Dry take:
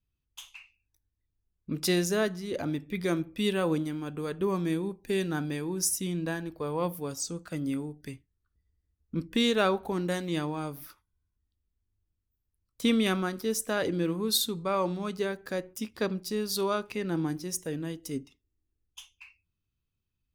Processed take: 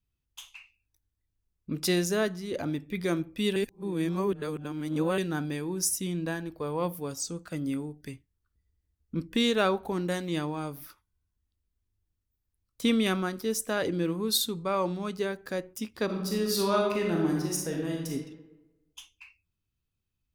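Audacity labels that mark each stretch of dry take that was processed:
3.560000	5.180000	reverse
16.050000	18.120000	reverb throw, RT60 1.1 s, DRR -1 dB

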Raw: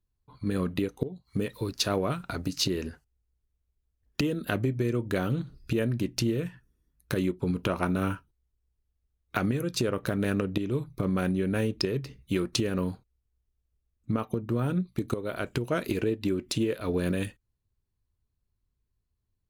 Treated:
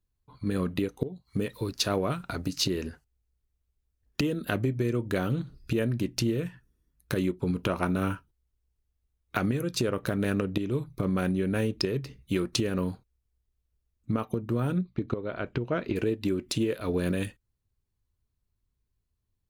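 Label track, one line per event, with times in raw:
14.810000	15.960000	distance through air 240 m

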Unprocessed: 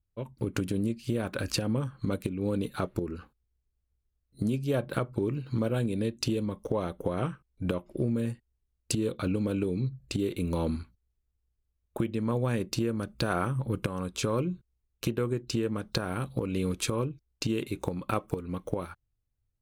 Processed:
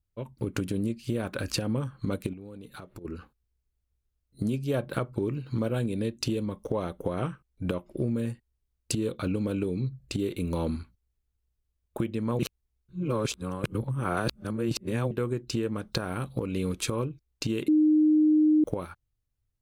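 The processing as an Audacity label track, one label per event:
2.330000	3.050000	compression 8:1, threshold -40 dBFS
12.390000	15.110000	reverse
17.680000	18.640000	bleep 307 Hz -17.5 dBFS

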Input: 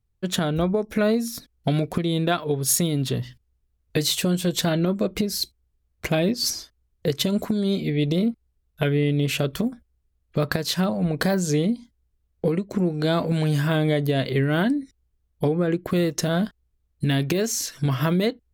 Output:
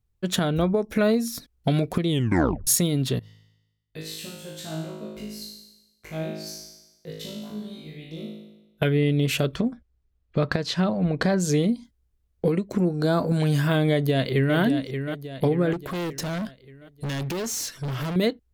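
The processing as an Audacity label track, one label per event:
2.090000	2.090000	tape stop 0.58 s
3.190000	8.820000	feedback comb 53 Hz, decay 0.99 s, mix 100%
9.550000	11.400000	distance through air 99 m
12.850000	13.400000	high-order bell 2.6 kHz -10 dB 1.1 oct
13.910000	14.560000	echo throw 580 ms, feedback 50%, level -8 dB
15.730000	18.160000	hard clipper -27 dBFS

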